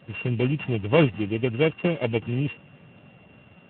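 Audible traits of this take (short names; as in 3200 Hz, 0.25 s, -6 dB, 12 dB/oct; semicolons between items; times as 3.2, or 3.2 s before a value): a buzz of ramps at a fixed pitch in blocks of 16 samples; Speex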